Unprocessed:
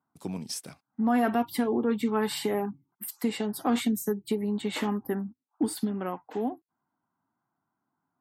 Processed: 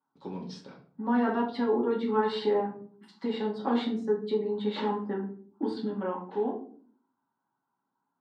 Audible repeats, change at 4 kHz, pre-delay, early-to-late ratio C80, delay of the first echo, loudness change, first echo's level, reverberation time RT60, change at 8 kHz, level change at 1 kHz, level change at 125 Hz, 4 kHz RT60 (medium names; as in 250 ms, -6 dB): no echo, -3.5 dB, 4 ms, 13.5 dB, no echo, -0.5 dB, no echo, 0.50 s, under -20 dB, 0.0 dB, -4.0 dB, 0.30 s